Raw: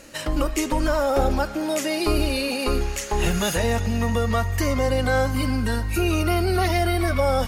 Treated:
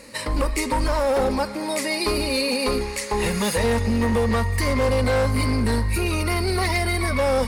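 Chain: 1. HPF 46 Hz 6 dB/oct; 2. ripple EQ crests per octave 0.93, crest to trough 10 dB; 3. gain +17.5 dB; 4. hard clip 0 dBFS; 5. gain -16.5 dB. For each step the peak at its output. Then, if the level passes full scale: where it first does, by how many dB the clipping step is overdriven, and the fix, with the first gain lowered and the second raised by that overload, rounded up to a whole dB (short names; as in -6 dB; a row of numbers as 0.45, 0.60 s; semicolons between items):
-9.5, -8.0, +9.5, 0.0, -16.5 dBFS; step 3, 9.5 dB; step 3 +7.5 dB, step 5 -6.5 dB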